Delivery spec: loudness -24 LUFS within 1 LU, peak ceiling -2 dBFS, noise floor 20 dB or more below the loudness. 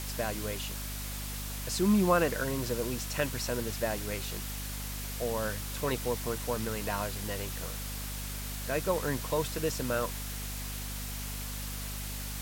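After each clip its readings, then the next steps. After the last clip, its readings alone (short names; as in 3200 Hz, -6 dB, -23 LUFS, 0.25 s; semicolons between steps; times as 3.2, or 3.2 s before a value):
hum 50 Hz; harmonics up to 250 Hz; hum level -37 dBFS; noise floor -38 dBFS; noise floor target -53 dBFS; loudness -33.0 LUFS; peak -11.5 dBFS; loudness target -24.0 LUFS
-> notches 50/100/150/200/250 Hz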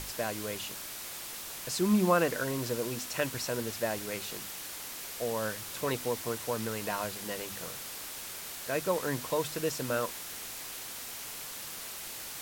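hum none; noise floor -42 dBFS; noise floor target -54 dBFS
-> denoiser 12 dB, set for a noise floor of -42 dBFS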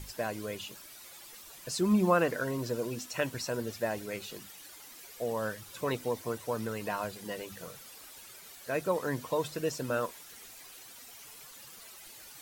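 noise floor -51 dBFS; noise floor target -54 dBFS
-> denoiser 6 dB, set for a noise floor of -51 dBFS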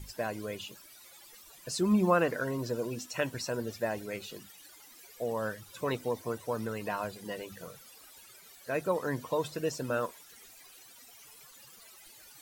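noise floor -55 dBFS; loudness -33.5 LUFS; peak -12.5 dBFS; loudness target -24.0 LUFS
-> gain +9.5 dB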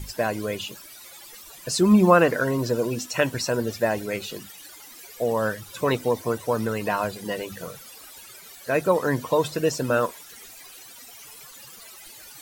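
loudness -24.0 LUFS; peak -3.0 dBFS; noise floor -45 dBFS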